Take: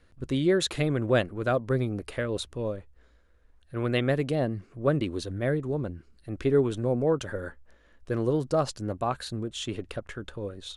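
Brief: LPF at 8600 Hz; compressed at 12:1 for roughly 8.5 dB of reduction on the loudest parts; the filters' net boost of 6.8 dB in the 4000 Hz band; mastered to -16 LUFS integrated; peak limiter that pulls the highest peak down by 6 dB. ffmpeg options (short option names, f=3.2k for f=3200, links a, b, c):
-af "lowpass=8.6k,equalizer=f=4k:t=o:g=8,acompressor=threshold=-26dB:ratio=12,volume=18dB,alimiter=limit=-5.5dB:level=0:latency=1"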